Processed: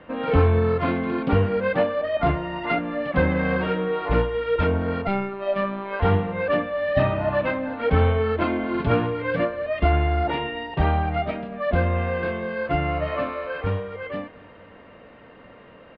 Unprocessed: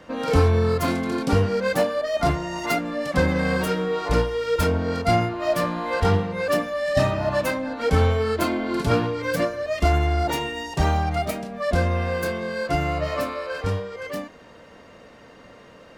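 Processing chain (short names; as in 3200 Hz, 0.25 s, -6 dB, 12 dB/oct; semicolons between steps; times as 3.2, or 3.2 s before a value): inverse Chebyshev low-pass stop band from 6000 Hz, stop band 40 dB; feedback echo 0.236 s, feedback 58%, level -22.5 dB; 5.07–6 robotiser 197 Hz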